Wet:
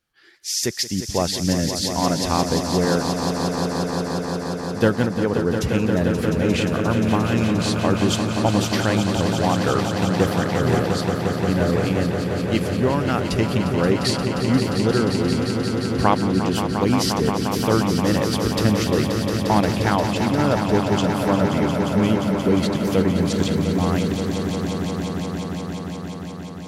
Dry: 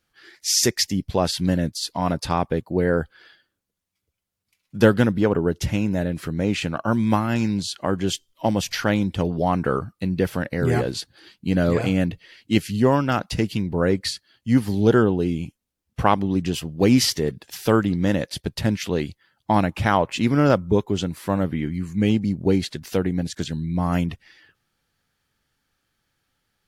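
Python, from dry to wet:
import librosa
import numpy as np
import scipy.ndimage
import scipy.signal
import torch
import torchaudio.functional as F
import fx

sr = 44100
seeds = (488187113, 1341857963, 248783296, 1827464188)

y = fx.rider(x, sr, range_db=10, speed_s=0.5)
y = fx.echo_swell(y, sr, ms=176, loudest=5, wet_db=-9.0)
y = y * 10.0 ** (-1.0 / 20.0)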